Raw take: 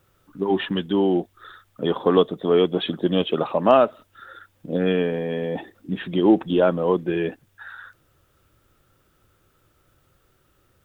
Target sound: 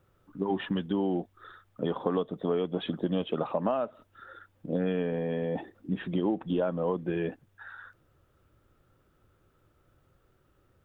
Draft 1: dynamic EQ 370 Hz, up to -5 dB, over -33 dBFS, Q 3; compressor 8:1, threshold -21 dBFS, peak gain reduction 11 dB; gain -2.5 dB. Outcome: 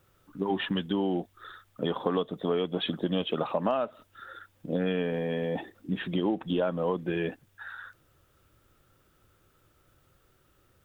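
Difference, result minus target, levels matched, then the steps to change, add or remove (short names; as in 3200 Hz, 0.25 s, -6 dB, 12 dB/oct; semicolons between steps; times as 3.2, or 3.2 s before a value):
4000 Hz band +6.5 dB
add after compressor: high shelf 2100 Hz -10.5 dB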